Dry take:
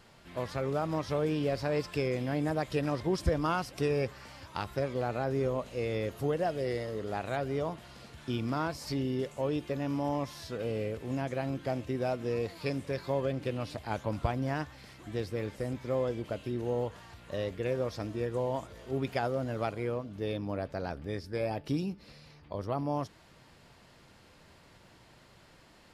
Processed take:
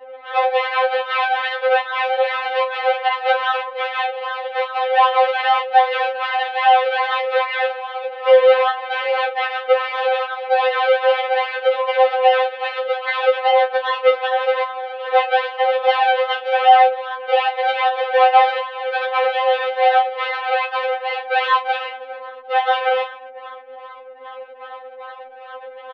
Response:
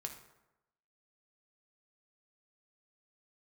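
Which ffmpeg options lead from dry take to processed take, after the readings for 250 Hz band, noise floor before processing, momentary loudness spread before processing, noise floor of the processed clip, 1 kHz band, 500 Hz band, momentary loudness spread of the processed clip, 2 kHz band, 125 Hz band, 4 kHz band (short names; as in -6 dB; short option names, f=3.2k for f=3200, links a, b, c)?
under -25 dB, -59 dBFS, 7 LU, -38 dBFS, +23.5 dB, +14.5 dB, 17 LU, +22.0 dB, under -40 dB, +20.5 dB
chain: -filter_complex "[0:a]equalizer=f=1k:w=0.39:g=10.5,asplit=2[a][b];[b]asplit=3[c][d][e];[c]adelay=107,afreqshift=110,volume=-23dB[f];[d]adelay=214,afreqshift=220,volume=-31.4dB[g];[e]adelay=321,afreqshift=330,volume=-39.8dB[h];[f][g][h]amix=inputs=3:normalize=0[i];[a][i]amix=inputs=2:normalize=0,acompressor=threshold=-31dB:ratio=6,flanger=delay=2.2:depth=4.2:regen=-71:speed=0.15:shape=triangular,acrusher=samples=38:mix=1:aa=0.000001:lfo=1:lforange=38:lforate=2.5,flanger=delay=5.9:depth=5.4:regen=90:speed=0.46:shape=triangular,asplit=2[j][k];[k]adelay=33,volume=-10.5dB[l];[j][l]amix=inputs=2:normalize=0,highpass=f=170:t=q:w=0.5412,highpass=f=170:t=q:w=1.307,lowpass=f=3.2k:t=q:w=0.5176,lowpass=f=3.2k:t=q:w=0.7071,lowpass=f=3.2k:t=q:w=1.932,afreqshift=280,anlmdn=0.0000251,alimiter=level_in=32.5dB:limit=-1dB:release=50:level=0:latency=1,afftfilt=real='re*3.46*eq(mod(b,12),0)':imag='im*3.46*eq(mod(b,12),0)':win_size=2048:overlap=0.75,volume=-3dB"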